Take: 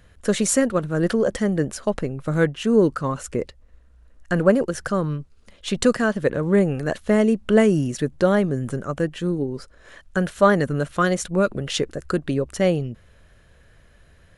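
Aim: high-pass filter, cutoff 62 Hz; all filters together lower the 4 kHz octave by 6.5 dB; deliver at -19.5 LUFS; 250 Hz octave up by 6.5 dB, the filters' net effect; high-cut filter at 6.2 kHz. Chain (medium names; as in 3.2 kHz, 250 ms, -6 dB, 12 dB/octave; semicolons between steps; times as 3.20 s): high-pass 62 Hz; low-pass 6.2 kHz; peaking EQ 250 Hz +8.5 dB; peaking EQ 4 kHz -8.5 dB; trim -1.5 dB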